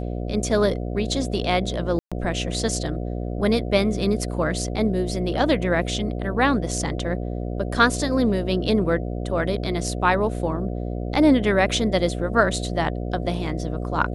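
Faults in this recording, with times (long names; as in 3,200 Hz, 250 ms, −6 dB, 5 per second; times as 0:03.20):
mains buzz 60 Hz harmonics 12 −28 dBFS
0:01.99–0:02.12: drop-out 126 ms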